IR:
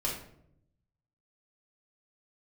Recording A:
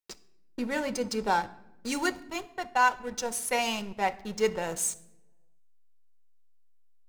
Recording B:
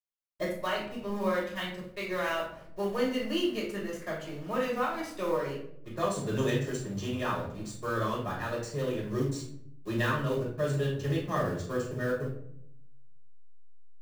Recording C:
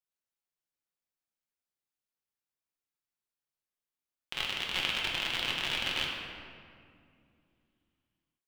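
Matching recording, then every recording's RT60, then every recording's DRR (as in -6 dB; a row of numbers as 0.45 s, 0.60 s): B; 0.95 s, 0.70 s, 2.3 s; 9.5 dB, -5.5 dB, -2.5 dB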